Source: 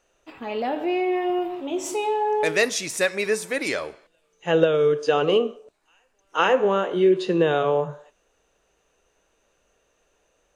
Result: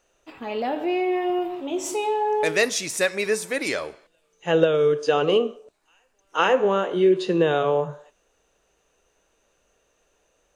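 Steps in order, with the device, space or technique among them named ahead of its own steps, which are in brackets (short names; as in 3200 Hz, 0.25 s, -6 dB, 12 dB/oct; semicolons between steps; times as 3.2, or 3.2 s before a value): exciter from parts (in parallel at -13 dB: HPF 2900 Hz 12 dB/oct + soft clip -25 dBFS, distortion -13 dB)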